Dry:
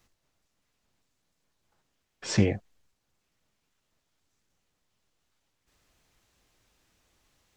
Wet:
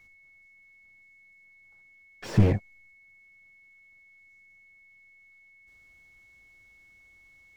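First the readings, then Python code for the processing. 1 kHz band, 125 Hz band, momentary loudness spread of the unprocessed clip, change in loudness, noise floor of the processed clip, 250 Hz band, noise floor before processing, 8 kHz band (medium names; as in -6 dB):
+4.0 dB, +5.5 dB, 14 LU, +2.5 dB, -58 dBFS, +1.0 dB, -79 dBFS, under -10 dB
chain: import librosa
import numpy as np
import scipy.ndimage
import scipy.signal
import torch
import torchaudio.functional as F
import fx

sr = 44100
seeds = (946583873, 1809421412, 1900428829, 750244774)

y = fx.low_shelf(x, sr, hz=200.0, db=6.5)
y = fx.leveller(y, sr, passes=1)
y = y + 10.0 ** (-55.0 / 20.0) * np.sin(2.0 * np.pi * 2200.0 * np.arange(len(y)) / sr)
y = fx.slew_limit(y, sr, full_power_hz=36.0)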